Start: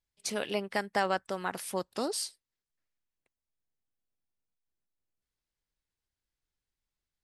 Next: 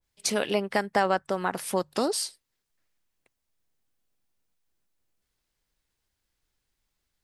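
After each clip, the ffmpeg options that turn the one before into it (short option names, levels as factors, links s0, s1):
-filter_complex "[0:a]bandreject=f=50:t=h:w=6,bandreject=f=100:t=h:w=6,bandreject=f=150:t=h:w=6,asplit=2[s0][s1];[s1]acompressor=threshold=0.0141:ratio=6,volume=1.12[s2];[s0][s2]amix=inputs=2:normalize=0,adynamicequalizer=threshold=0.00794:dfrequency=1700:dqfactor=0.7:tfrequency=1700:tqfactor=0.7:attack=5:release=100:ratio=0.375:range=3:mode=cutabove:tftype=highshelf,volume=1.5"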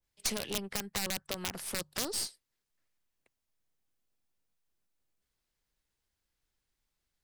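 -filter_complex "[0:a]aeval=exprs='(mod(5.96*val(0)+1,2)-1)/5.96':c=same,acrossover=split=210|3000[s0][s1][s2];[s1]acompressor=threshold=0.0224:ratio=6[s3];[s0][s3][s2]amix=inputs=3:normalize=0,aeval=exprs='0.376*(cos(1*acos(clip(val(0)/0.376,-1,1)))-cos(1*PI/2))+0.0376*(cos(8*acos(clip(val(0)/0.376,-1,1)))-cos(8*PI/2))':c=same,volume=0.596"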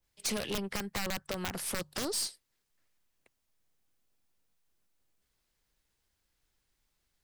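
-af "asoftclip=type=tanh:threshold=0.0266,volume=1.78"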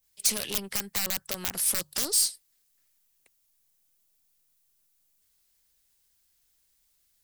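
-af "crystalizer=i=4:c=0,volume=0.708"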